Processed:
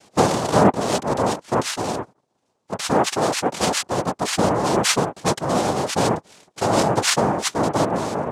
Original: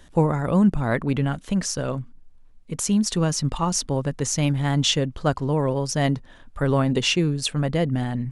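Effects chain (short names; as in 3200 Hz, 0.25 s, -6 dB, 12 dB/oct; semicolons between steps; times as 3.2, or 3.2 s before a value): noise vocoder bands 2; 2.91–3.54 HPF 190 Hz 6 dB/oct; gain +2 dB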